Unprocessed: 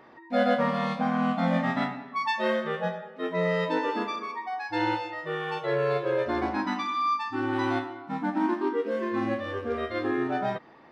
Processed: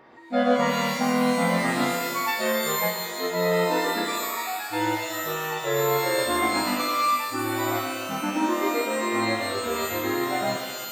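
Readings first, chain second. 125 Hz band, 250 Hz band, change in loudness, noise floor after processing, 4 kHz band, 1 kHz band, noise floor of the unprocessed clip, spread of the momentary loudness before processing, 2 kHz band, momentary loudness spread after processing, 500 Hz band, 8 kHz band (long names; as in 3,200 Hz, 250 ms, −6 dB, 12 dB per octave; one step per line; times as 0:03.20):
+1.0 dB, +1.5 dB, +3.5 dB, −34 dBFS, +10.0 dB, +3.0 dB, −50 dBFS, 7 LU, +5.0 dB, 6 LU, +2.5 dB, can't be measured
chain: reverb with rising layers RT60 1.5 s, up +12 semitones, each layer −2 dB, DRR 4.5 dB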